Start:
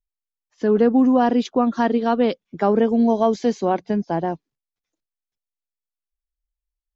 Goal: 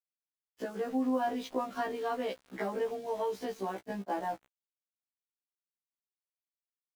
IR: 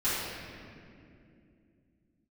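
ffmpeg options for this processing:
-filter_complex "[0:a]acompressor=threshold=-28dB:ratio=3,highpass=frequency=670:poles=1,aemphasis=mode=reproduction:type=cd,asplit=2[link_01][link_02];[1:a]atrim=start_sample=2205[link_03];[link_02][link_03]afir=irnorm=-1:irlink=0,volume=-32dB[link_04];[link_01][link_04]amix=inputs=2:normalize=0,aeval=exprs='val(0)*gte(abs(val(0)),0.00422)':channel_layout=same,afftfilt=real='re*1.73*eq(mod(b,3),0)':imag='im*1.73*eq(mod(b,3),0)':win_size=2048:overlap=0.75,volume=3dB"

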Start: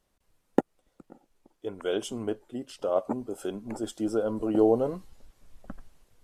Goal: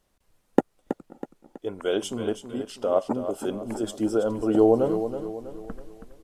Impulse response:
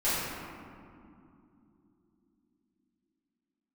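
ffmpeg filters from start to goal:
-af "aecho=1:1:324|648|972|1296|1620:0.335|0.144|0.0619|0.0266|0.0115,volume=3.5dB"

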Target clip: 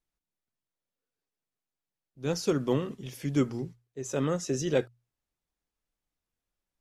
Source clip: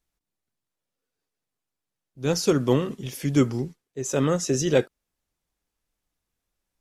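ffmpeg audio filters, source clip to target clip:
ffmpeg -i in.wav -af "highshelf=frequency=5800:gain=-4.5,bandreject=frequency=60:width_type=h:width=6,bandreject=frequency=120:width_type=h:width=6,volume=-6dB" out.wav

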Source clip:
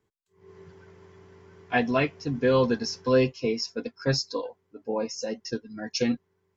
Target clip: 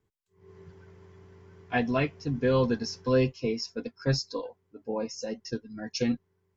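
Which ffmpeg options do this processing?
ffmpeg -i in.wav -af "lowshelf=frequency=140:gain=9.5,volume=-4dB" out.wav

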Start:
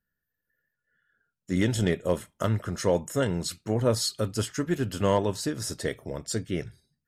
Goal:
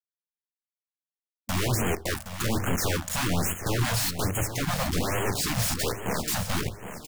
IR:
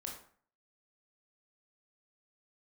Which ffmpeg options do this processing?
-filter_complex "[0:a]asettb=1/sr,asplit=3[link_01][link_02][link_03];[link_01]atrim=end=4.484[link_04];[link_02]atrim=start=4.48:end=5.11,asetpts=PTS-STARTPTS,afade=type=in:duration=0.004:curve=qsin,afade=type=out:start_time=0.626:duration=0.004:curve=qsin,aemphasis=mode=reproduction:type=bsi[link_05];[link_03]atrim=start=5.106[link_06];[link_04][link_05]acrossfade=duration=0.004:curve1=hsin:curve2=qsin[link_07];[link_07][link_06]acrossfade=duration=0.004:curve1=qsin:curve2=hsin,asplit=2[link_08][link_09];[link_09]acompressor=threshold=-37dB:ratio=4,volume=2dB[link_10];[link_08][link_10]amix=inputs=2:normalize=0,alimiter=limit=-18dB:level=0:latency=1:release=370,aeval=exprs='0.0282*(abs(mod(val(0)/0.0282+3,4)-2)-1)':channel_layout=same,acrusher=bits=5:mix=0:aa=0.000001,aecho=1:1:768|1536|2304|3072:0.299|0.116|0.0454|0.0177,asplit=2[link_11][link_12];[1:a]atrim=start_sample=2205,asetrate=61740,aresample=44100,lowshelf=frequency=450:gain=11.5[link_13];[link_12][link_13]afir=irnorm=-1:irlink=0,volume=-8dB[link_14];[link_11][link_14]amix=inputs=2:normalize=0,afftfilt=real='re*(1-between(b*sr/1024,310*pow(4700/310,0.5+0.5*sin(2*PI*1.2*pts/sr))/1.41,310*pow(4700/310,0.5+0.5*sin(2*PI*1.2*pts/sr))*1.41))':imag='im*(1-between(b*sr/1024,310*pow(4700/310,0.5+0.5*sin(2*PI*1.2*pts/sr))/1.41,310*pow(4700/310,0.5+0.5*sin(2*PI*1.2*pts/sr))*1.41))':win_size=1024:overlap=0.75,volume=5dB"

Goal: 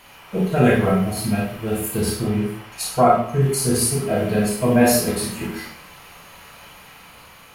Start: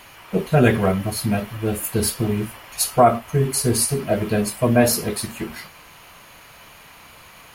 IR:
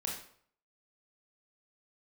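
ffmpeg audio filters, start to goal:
-filter_complex "[0:a]asettb=1/sr,asplit=3[link_01][link_02][link_03];[link_01]atrim=end=2.014[link_04];[link_02]atrim=start=2.01:end=3.42,asetpts=PTS-STARTPTS,afade=type=in:duration=0.004:curve=qsin,afade=type=out:start_time=1.406:duration=0.004:curve=qsin,highshelf=frequency=6900:gain=-7[link_05];[link_03]atrim=start=3.416[link_06];[link_04][link_05]acrossfade=duration=0.004:curve1=hsin:curve2=qsin[link_07];[link_07][link_06]acrossfade=duration=0.004:curve1=qsin:curve2=hsin[link_08];[1:a]atrim=start_sample=2205,asetrate=43659,aresample=44100[link_09];[link_08][link_09]afir=irnorm=-1:irlink=0,dynaudnorm=framelen=550:gausssize=5:maxgain=11.5dB,volume=-2.5dB"

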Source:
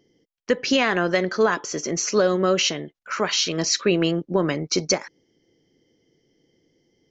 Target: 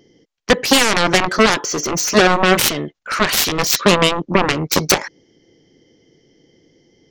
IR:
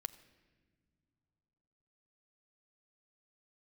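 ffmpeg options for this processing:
-af "aresample=16000,aresample=44100,aeval=exprs='0.398*(cos(1*acos(clip(val(0)/0.398,-1,1)))-cos(1*PI/2))+0.158*(cos(7*acos(clip(val(0)/0.398,-1,1)))-cos(7*PI/2))':channel_layout=same,volume=5.5dB"

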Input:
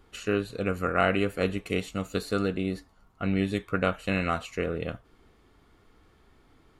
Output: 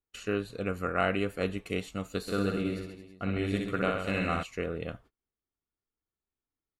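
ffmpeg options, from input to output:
ffmpeg -i in.wav -filter_complex "[0:a]agate=range=-32dB:threshold=-49dB:ratio=16:detection=peak,asplit=3[link_01][link_02][link_03];[link_01]afade=type=out:start_time=2.26:duration=0.02[link_04];[link_02]aecho=1:1:60|132|218.4|322.1|446.5:0.631|0.398|0.251|0.158|0.1,afade=type=in:start_time=2.26:duration=0.02,afade=type=out:start_time=4.42:duration=0.02[link_05];[link_03]afade=type=in:start_time=4.42:duration=0.02[link_06];[link_04][link_05][link_06]amix=inputs=3:normalize=0,volume=-4dB" out.wav

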